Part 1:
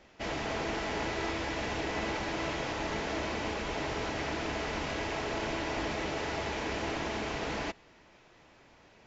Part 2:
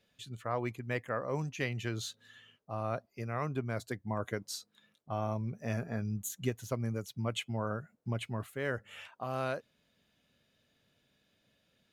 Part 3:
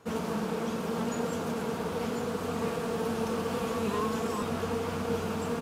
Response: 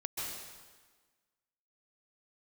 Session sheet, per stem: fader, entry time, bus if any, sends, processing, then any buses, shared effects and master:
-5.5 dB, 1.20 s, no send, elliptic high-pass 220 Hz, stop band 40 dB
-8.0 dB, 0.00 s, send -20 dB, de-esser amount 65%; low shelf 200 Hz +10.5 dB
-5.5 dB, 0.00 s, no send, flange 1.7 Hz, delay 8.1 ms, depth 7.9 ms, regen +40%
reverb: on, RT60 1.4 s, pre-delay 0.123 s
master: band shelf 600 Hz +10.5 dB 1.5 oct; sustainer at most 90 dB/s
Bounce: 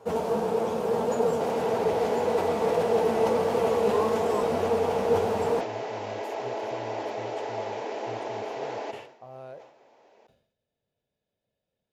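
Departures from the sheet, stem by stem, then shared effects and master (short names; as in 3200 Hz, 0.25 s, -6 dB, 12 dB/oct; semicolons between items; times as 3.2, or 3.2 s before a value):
stem 2 -8.0 dB -> -18.5 dB; stem 3 -5.5 dB -> +2.0 dB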